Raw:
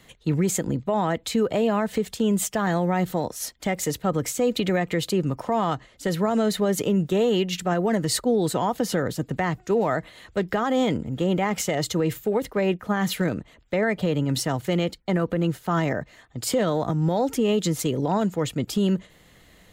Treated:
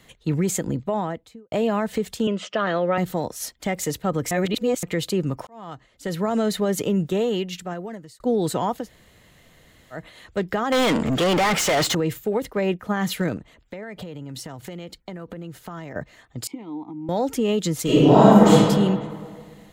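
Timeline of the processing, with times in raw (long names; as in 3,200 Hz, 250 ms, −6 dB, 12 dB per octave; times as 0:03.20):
0:00.80–0:01.52: fade out and dull
0:02.27–0:02.98: loudspeaker in its box 240–4,700 Hz, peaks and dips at 570 Hz +9 dB, 830 Hz −7 dB, 1,300 Hz +7 dB, 2,900 Hz +9 dB
0:04.31–0:04.83: reverse
0:05.47–0:06.34: fade in linear
0:07.05–0:08.20: fade out
0:08.81–0:09.98: fill with room tone, crossfade 0.16 s
0:10.72–0:11.95: mid-hump overdrive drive 31 dB, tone 4,900 Hz, clips at −13.5 dBFS
0:13.37–0:15.96: downward compressor 10 to 1, threshold −31 dBFS
0:16.47–0:17.09: formant filter u
0:17.83–0:18.50: thrown reverb, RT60 1.8 s, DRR −11.5 dB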